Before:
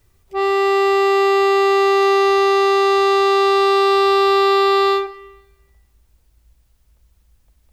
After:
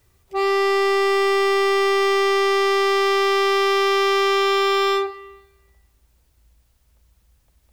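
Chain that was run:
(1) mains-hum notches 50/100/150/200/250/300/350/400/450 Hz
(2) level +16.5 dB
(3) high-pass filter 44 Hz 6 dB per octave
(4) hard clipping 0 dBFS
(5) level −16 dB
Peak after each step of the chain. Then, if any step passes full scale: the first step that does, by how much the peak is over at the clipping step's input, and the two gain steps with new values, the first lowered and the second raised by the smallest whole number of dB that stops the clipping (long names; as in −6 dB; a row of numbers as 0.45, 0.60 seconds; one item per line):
−8.0, +8.5, +8.0, 0.0, −16.0 dBFS
step 2, 8.0 dB
step 2 +8.5 dB, step 5 −8 dB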